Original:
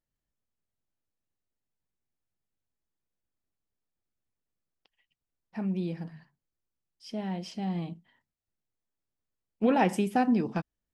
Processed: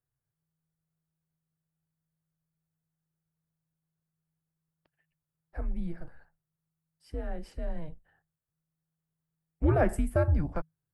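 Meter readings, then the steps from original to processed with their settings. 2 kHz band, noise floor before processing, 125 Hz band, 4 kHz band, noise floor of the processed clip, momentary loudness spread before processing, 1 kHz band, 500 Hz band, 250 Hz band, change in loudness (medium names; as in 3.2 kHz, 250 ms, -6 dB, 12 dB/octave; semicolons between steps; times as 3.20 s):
-3.0 dB, under -85 dBFS, +5.0 dB, -14.5 dB, under -85 dBFS, 16 LU, -7.0 dB, +0.5 dB, -7.0 dB, -1.5 dB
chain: high-order bell 4.1 kHz -13.5 dB; frequency shift -160 Hz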